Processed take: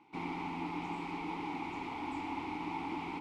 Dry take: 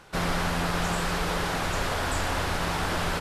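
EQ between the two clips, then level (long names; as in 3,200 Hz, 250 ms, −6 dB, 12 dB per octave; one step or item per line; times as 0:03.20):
formant filter u
+3.0 dB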